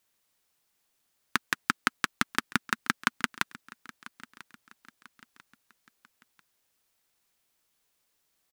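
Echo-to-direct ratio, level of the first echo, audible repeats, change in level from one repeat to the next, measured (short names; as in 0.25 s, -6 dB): -19.0 dB, -20.0 dB, 2, -7.5 dB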